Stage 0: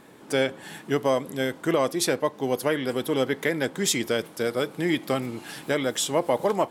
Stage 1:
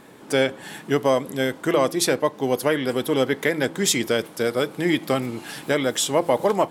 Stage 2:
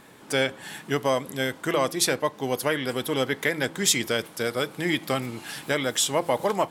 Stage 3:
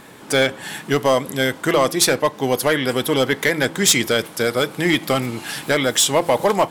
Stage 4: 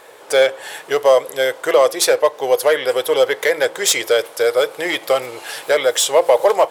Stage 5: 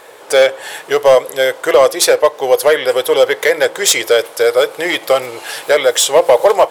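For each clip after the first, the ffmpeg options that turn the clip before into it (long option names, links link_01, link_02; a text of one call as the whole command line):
ffmpeg -i in.wav -af "bandreject=frequency=163.6:width_type=h:width=4,bandreject=frequency=327.2:width_type=h:width=4,volume=3.5dB" out.wav
ffmpeg -i in.wav -af "equalizer=frequency=350:width_type=o:width=2.5:gain=-6" out.wav
ffmpeg -i in.wav -af "asoftclip=type=hard:threshold=-16.5dB,volume=8dB" out.wav
ffmpeg -i in.wav -af "lowshelf=frequency=330:width_type=q:width=3:gain=-14,volume=-1dB" out.wav
ffmpeg -i in.wav -af "volume=5.5dB,asoftclip=hard,volume=-5.5dB,volume=4dB" out.wav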